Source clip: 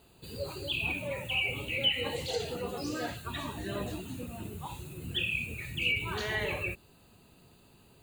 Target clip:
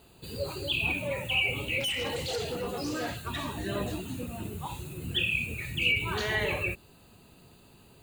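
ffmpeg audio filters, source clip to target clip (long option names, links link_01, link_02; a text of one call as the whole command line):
ffmpeg -i in.wav -filter_complex "[0:a]asettb=1/sr,asplit=3[link_01][link_02][link_03];[link_01]atrim=end=1.804[link_04];[link_02]atrim=start=1.8:end=3.53,asetpts=PTS-STARTPTS,afade=type=in:duration=0.004:curve=qsin,afade=type=out:start_time=1.726:duration=0.004:curve=qsin,asoftclip=type=hard:threshold=-32dB[link_05];[link_03]atrim=start=3.526[link_06];[link_04][link_05]acrossfade=duration=0.004:curve1=hsin:curve2=qsin[link_07];[link_07][link_06]acrossfade=duration=0.004:curve1=qsin:curve2=hsin,volume=3.5dB" out.wav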